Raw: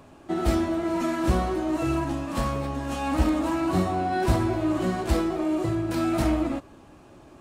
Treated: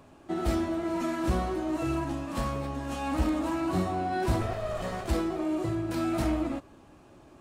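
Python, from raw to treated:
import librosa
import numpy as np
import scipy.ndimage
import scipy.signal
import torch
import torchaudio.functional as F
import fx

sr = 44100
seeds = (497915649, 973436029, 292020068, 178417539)

p1 = fx.lower_of_two(x, sr, delay_ms=1.6, at=(4.41, 5.08))
p2 = np.clip(p1, -10.0 ** (-19.0 / 20.0), 10.0 ** (-19.0 / 20.0))
p3 = p1 + (p2 * librosa.db_to_amplitude(-8.0))
y = p3 * librosa.db_to_amplitude(-7.0)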